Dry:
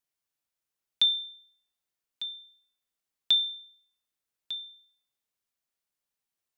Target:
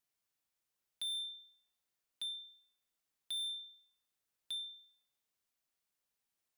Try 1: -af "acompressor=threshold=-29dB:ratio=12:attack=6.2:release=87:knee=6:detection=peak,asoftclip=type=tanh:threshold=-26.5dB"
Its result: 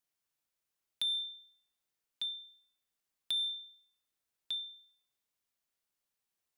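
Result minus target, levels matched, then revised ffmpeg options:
soft clipping: distortion −7 dB
-af "acompressor=threshold=-29dB:ratio=12:attack=6.2:release=87:knee=6:detection=peak,asoftclip=type=tanh:threshold=-37dB"

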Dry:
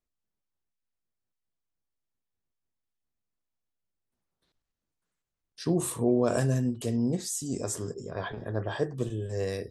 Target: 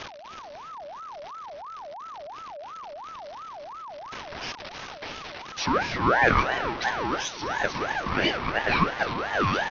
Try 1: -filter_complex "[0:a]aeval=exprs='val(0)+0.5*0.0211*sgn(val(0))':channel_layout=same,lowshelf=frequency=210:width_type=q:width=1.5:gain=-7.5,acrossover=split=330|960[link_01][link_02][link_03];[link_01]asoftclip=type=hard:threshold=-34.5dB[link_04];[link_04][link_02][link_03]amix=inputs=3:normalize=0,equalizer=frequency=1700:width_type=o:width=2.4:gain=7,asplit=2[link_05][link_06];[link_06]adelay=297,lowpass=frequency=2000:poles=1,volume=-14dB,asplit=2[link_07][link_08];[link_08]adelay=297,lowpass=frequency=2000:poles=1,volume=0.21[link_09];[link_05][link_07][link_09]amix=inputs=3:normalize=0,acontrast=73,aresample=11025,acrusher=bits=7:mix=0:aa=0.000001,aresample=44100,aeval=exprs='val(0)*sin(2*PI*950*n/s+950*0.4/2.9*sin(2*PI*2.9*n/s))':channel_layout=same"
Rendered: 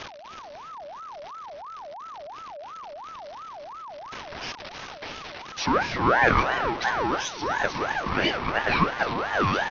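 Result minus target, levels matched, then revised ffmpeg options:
hard clipping: distortion −5 dB
-filter_complex "[0:a]aeval=exprs='val(0)+0.5*0.0211*sgn(val(0))':channel_layout=same,lowshelf=frequency=210:width_type=q:width=1.5:gain=-7.5,acrossover=split=330|960[link_01][link_02][link_03];[link_01]asoftclip=type=hard:threshold=-43dB[link_04];[link_04][link_02][link_03]amix=inputs=3:normalize=0,equalizer=frequency=1700:width_type=o:width=2.4:gain=7,asplit=2[link_05][link_06];[link_06]adelay=297,lowpass=frequency=2000:poles=1,volume=-14dB,asplit=2[link_07][link_08];[link_08]adelay=297,lowpass=frequency=2000:poles=1,volume=0.21[link_09];[link_05][link_07][link_09]amix=inputs=3:normalize=0,acontrast=73,aresample=11025,acrusher=bits=7:mix=0:aa=0.000001,aresample=44100,aeval=exprs='val(0)*sin(2*PI*950*n/s+950*0.4/2.9*sin(2*PI*2.9*n/s))':channel_layout=same"

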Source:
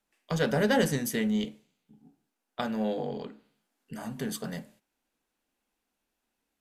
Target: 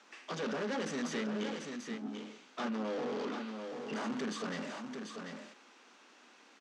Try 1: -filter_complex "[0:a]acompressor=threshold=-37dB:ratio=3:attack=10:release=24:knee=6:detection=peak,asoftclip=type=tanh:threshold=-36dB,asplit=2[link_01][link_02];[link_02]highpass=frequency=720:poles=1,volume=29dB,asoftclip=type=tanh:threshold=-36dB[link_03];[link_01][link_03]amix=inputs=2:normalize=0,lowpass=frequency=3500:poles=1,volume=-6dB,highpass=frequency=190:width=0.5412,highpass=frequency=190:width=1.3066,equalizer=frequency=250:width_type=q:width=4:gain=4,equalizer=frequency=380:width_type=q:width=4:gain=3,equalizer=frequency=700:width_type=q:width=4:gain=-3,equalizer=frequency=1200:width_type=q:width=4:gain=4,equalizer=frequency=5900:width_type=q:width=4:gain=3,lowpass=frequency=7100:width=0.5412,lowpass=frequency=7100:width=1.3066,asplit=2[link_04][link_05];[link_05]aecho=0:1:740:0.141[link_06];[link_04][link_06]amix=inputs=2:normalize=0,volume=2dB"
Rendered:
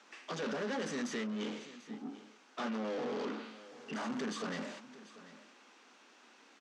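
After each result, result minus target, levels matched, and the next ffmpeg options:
echo-to-direct −11 dB; downward compressor: peak gain reduction +6.5 dB
-filter_complex "[0:a]acompressor=threshold=-37dB:ratio=3:attack=10:release=24:knee=6:detection=peak,asoftclip=type=tanh:threshold=-36dB,asplit=2[link_01][link_02];[link_02]highpass=frequency=720:poles=1,volume=29dB,asoftclip=type=tanh:threshold=-36dB[link_03];[link_01][link_03]amix=inputs=2:normalize=0,lowpass=frequency=3500:poles=1,volume=-6dB,highpass=frequency=190:width=0.5412,highpass=frequency=190:width=1.3066,equalizer=frequency=250:width_type=q:width=4:gain=4,equalizer=frequency=380:width_type=q:width=4:gain=3,equalizer=frequency=700:width_type=q:width=4:gain=-3,equalizer=frequency=1200:width_type=q:width=4:gain=4,equalizer=frequency=5900:width_type=q:width=4:gain=3,lowpass=frequency=7100:width=0.5412,lowpass=frequency=7100:width=1.3066,asplit=2[link_04][link_05];[link_05]aecho=0:1:740:0.501[link_06];[link_04][link_06]amix=inputs=2:normalize=0,volume=2dB"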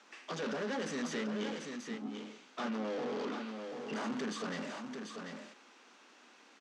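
downward compressor: peak gain reduction +6.5 dB
-filter_complex "[0:a]acompressor=threshold=-27dB:ratio=3:attack=10:release=24:knee=6:detection=peak,asoftclip=type=tanh:threshold=-36dB,asplit=2[link_01][link_02];[link_02]highpass=frequency=720:poles=1,volume=29dB,asoftclip=type=tanh:threshold=-36dB[link_03];[link_01][link_03]amix=inputs=2:normalize=0,lowpass=frequency=3500:poles=1,volume=-6dB,highpass=frequency=190:width=0.5412,highpass=frequency=190:width=1.3066,equalizer=frequency=250:width_type=q:width=4:gain=4,equalizer=frequency=380:width_type=q:width=4:gain=3,equalizer=frequency=700:width_type=q:width=4:gain=-3,equalizer=frequency=1200:width_type=q:width=4:gain=4,equalizer=frequency=5900:width_type=q:width=4:gain=3,lowpass=frequency=7100:width=0.5412,lowpass=frequency=7100:width=1.3066,asplit=2[link_04][link_05];[link_05]aecho=0:1:740:0.501[link_06];[link_04][link_06]amix=inputs=2:normalize=0,volume=2dB"

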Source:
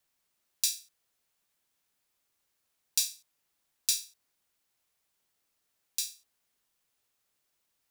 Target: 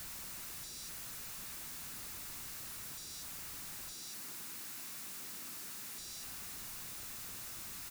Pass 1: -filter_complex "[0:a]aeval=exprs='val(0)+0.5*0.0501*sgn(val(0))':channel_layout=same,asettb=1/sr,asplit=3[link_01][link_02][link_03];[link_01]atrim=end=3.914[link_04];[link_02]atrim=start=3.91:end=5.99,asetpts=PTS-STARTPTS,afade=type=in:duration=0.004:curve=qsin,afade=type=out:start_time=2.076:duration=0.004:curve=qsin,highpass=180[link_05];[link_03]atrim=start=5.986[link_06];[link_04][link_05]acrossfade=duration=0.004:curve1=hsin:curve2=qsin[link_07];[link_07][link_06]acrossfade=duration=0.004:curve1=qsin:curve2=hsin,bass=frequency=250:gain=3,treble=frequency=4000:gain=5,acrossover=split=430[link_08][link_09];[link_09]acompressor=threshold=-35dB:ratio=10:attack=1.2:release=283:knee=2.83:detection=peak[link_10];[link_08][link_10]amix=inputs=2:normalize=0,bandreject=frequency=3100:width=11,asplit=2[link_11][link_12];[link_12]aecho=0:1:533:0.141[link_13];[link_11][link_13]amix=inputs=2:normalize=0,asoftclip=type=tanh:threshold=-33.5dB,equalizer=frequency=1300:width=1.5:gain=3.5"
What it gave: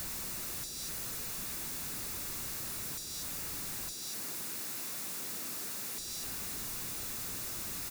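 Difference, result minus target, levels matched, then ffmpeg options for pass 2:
soft clipping: distortion −11 dB
-filter_complex "[0:a]aeval=exprs='val(0)+0.5*0.0501*sgn(val(0))':channel_layout=same,asettb=1/sr,asplit=3[link_01][link_02][link_03];[link_01]atrim=end=3.914[link_04];[link_02]atrim=start=3.91:end=5.99,asetpts=PTS-STARTPTS,afade=type=in:duration=0.004:curve=qsin,afade=type=out:start_time=2.076:duration=0.004:curve=qsin,highpass=180[link_05];[link_03]atrim=start=5.986[link_06];[link_04][link_05]acrossfade=duration=0.004:curve1=hsin:curve2=qsin[link_07];[link_07][link_06]acrossfade=duration=0.004:curve1=qsin:curve2=hsin,bass=frequency=250:gain=3,treble=frequency=4000:gain=5,acrossover=split=430[link_08][link_09];[link_09]acompressor=threshold=-35dB:ratio=10:attack=1.2:release=283:knee=2.83:detection=peak[link_10];[link_08][link_10]amix=inputs=2:normalize=0,bandreject=frequency=3100:width=11,asplit=2[link_11][link_12];[link_12]aecho=0:1:533:0.141[link_13];[link_11][link_13]amix=inputs=2:normalize=0,asoftclip=type=tanh:threshold=-45dB,equalizer=frequency=1300:width=1.5:gain=3.5"

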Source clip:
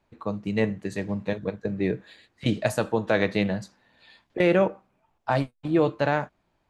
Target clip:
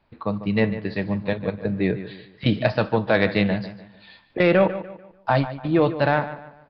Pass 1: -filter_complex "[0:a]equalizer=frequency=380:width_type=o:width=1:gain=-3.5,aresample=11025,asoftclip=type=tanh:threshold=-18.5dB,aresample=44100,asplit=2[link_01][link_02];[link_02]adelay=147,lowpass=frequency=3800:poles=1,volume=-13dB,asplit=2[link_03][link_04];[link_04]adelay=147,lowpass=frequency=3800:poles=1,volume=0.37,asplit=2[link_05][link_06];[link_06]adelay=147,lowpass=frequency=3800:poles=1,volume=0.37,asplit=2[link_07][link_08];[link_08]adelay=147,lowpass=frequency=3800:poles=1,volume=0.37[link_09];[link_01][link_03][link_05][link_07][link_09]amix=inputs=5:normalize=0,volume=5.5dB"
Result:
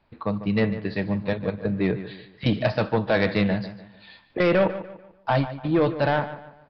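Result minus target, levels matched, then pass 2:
soft clipping: distortion +11 dB
-filter_complex "[0:a]equalizer=frequency=380:width_type=o:width=1:gain=-3.5,aresample=11025,asoftclip=type=tanh:threshold=-10dB,aresample=44100,asplit=2[link_01][link_02];[link_02]adelay=147,lowpass=frequency=3800:poles=1,volume=-13dB,asplit=2[link_03][link_04];[link_04]adelay=147,lowpass=frequency=3800:poles=1,volume=0.37,asplit=2[link_05][link_06];[link_06]adelay=147,lowpass=frequency=3800:poles=1,volume=0.37,asplit=2[link_07][link_08];[link_08]adelay=147,lowpass=frequency=3800:poles=1,volume=0.37[link_09];[link_01][link_03][link_05][link_07][link_09]amix=inputs=5:normalize=0,volume=5.5dB"

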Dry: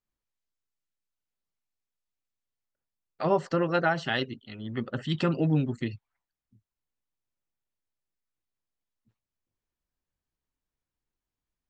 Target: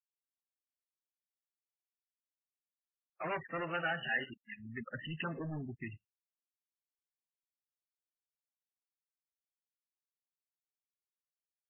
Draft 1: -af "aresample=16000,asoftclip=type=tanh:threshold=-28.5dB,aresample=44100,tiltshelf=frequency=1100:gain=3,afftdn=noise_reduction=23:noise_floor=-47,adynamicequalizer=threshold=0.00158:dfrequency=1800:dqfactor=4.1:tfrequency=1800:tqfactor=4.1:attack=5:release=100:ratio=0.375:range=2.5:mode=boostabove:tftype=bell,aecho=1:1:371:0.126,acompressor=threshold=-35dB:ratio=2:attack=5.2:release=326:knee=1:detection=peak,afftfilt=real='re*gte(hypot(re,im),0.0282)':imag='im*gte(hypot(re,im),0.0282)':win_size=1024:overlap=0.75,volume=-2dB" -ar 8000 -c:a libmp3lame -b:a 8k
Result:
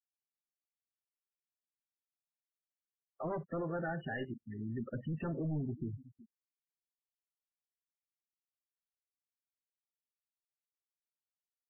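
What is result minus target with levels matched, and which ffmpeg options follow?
downward compressor: peak gain reduction +5 dB; 1,000 Hz band −3.5 dB
-af "aresample=16000,asoftclip=type=tanh:threshold=-28.5dB,aresample=44100,tiltshelf=frequency=1100:gain=-7,afftdn=noise_reduction=23:noise_floor=-47,adynamicequalizer=threshold=0.00158:dfrequency=1800:dqfactor=4.1:tfrequency=1800:tqfactor=4.1:attack=5:release=100:ratio=0.375:range=2.5:mode=boostabove:tftype=bell,aecho=1:1:371:0.126,afftfilt=real='re*gte(hypot(re,im),0.0282)':imag='im*gte(hypot(re,im),0.0282)':win_size=1024:overlap=0.75,volume=-2dB" -ar 8000 -c:a libmp3lame -b:a 8k

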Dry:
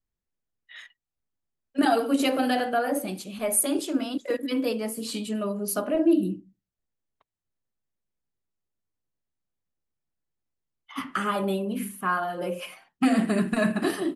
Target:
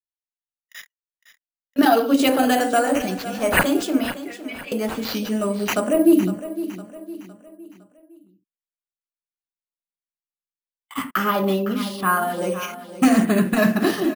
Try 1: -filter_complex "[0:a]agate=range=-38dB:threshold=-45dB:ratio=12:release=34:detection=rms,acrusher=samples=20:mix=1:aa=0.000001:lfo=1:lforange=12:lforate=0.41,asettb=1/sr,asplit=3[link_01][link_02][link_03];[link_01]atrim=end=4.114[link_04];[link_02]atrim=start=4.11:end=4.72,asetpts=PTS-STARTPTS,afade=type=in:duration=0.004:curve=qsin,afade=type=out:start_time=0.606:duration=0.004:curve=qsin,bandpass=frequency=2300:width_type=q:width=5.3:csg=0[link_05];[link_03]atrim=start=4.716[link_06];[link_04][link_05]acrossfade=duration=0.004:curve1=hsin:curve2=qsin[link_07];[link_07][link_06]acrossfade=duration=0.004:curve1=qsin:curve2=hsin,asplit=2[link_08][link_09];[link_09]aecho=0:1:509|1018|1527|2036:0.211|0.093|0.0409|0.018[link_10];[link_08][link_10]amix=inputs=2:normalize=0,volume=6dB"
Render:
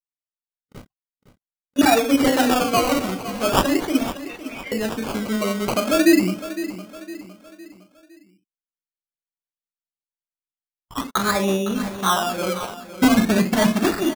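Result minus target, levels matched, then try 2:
sample-and-hold swept by an LFO: distortion +9 dB
-filter_complex "[0:a]agate=range=-38dB:threshold=-45dB:ratio=12:release=34:detection=rms,acrusher=samples=4:mix=1:aa=0.000001:lfo=1:lforange=2.4:lforate=0.41,asettb=1/sr,asplit=3[link_01][link_02][link_03];[link_01]atrim=end=4.114[link_04];[link_02]atrim=start=4.11:end=4.72,asetpts=PTS-STARTPTS,afade=type=in:duration=0.004:curve=qsin,afade=type=out:start_time=0.606:duration=0.004:curve=qsin,bandpass=frequency=2300:width_type=q:width=5.3:csg=0[link_05];[link_03]atrim=start=4.716[link_06];[link_04][link_05]acrossfade=duration=0.004:curve1=hsin:curve2=qsin[link_07];[link_07][link_06]acrossfade=duration=0.004:curve1=qsin:curve2=hsin,asplit=2[link_08][link_09];[link_09]aecho=0:1:509|1018|1527|2036:0.211|0.093|0.0409|0.018[link_10];[link_08][link_10]amix=inputs=2:normalize=0,volume=6dB"

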